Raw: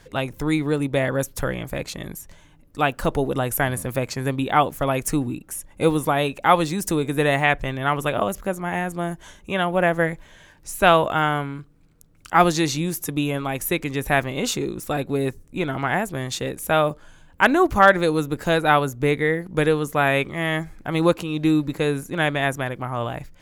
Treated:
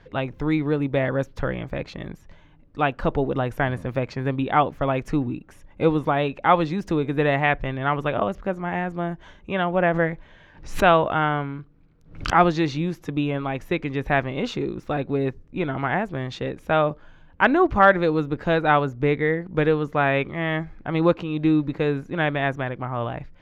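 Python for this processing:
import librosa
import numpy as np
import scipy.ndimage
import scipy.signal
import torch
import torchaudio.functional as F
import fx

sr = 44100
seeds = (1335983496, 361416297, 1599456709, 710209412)

y = fx.air_absorb(x, sr, metres=250.0)
y = fx.pre_swell(y, sr, db_per_s=120.0, at=(9.88, 12.49))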